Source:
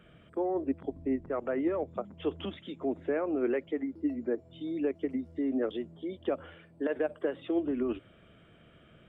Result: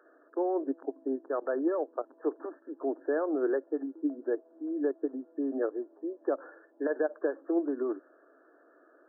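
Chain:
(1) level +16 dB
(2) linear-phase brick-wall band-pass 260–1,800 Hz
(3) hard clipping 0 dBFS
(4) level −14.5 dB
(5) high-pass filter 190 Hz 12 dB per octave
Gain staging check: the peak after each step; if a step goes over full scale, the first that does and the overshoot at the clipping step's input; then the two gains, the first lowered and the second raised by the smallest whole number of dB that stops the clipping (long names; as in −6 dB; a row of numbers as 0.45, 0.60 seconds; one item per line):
−2.5, −2.5, −2.5, −17.0, −17.0 dBFS
no step passes full scale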